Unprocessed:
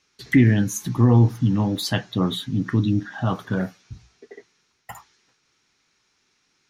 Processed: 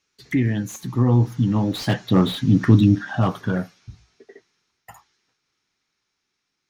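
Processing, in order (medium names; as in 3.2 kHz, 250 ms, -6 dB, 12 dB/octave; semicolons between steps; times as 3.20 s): Doppler pass-by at 2.55 s, 8 m/s, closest 4.2 m; slew-rate limiter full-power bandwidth 59 Hz; trim +7.5 dB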